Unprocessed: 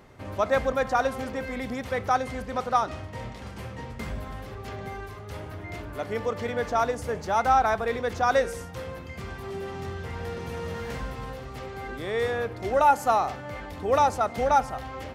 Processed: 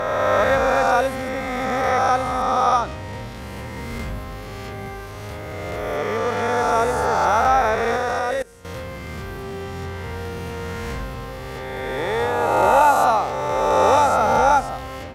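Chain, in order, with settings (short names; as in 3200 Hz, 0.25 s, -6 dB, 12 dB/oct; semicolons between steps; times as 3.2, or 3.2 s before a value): spectral swells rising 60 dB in 2.65 s; 7.96–8.65 level quantiser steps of 24 dB; gain +1.5 dB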